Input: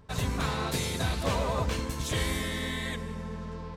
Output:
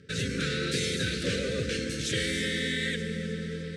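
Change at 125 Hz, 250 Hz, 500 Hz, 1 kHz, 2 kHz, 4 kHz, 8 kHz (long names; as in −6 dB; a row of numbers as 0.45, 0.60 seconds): −1.5, +2.5, +2.0, −13.5, +4.5, +4.5, +1.5 decibels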